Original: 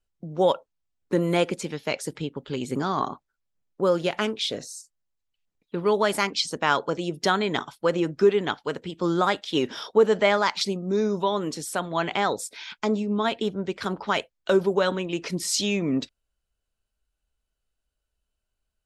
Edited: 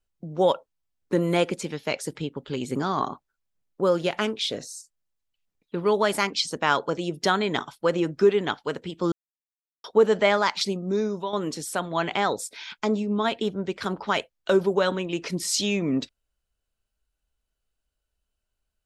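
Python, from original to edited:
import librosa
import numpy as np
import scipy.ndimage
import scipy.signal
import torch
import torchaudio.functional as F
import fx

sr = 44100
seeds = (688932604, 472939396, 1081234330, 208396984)

y = fx.edit(x, sr, fx.silence(start_s=9.12, length_s=0.72),
    fx.fade_out_to(start_s=10.88, length_s=0.45, floor_db=-8.5), tone=tone)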